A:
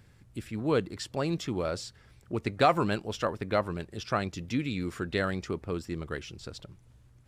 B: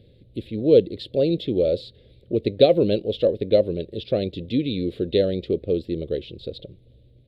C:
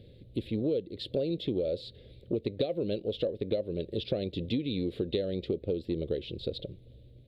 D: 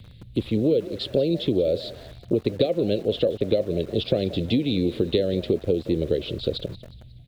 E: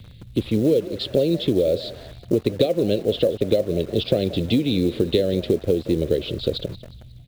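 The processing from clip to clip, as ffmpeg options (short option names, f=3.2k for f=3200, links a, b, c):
-af "firequalizer=gain_entry='entry(160,0);entry(530,11);entry(890,-24);entry(1300,-26);entry(2100,-10);entry(3800,7);entry(5900,-29);entry(10000,-16)':delay=0.05:min_phase=1,volume=4.5dB"
-af "acompressor=threshold=-27dB:ratio=12"
-filter_complex "[0:a]asplit=5[a][b][c][d][e];[b]adelay=181,afreqshift=47,volume=-17dB[f];[c]adelay=362,afreqshift=94,volume=-24.3dB[g];[d]adelay=543,afreqshift=141,volume=-31.7dB[h];[e]adelay=724,afreqshift=188,volume=-39dB[i];[a][f][g][h][i]amix=inputs=5:normalize=0,acrossover=split=230|880[j][k][l];[k]aeval=exprs='val(0)*gte(abs(val(0)),0.00211)':c=same[m];[j][m][l]amix=inputs=3:normalize=0,volume=8.5dB"
-af "acrusher=bits=7:mode=log:mix=0:aa=0.000001,volume=2.5dB"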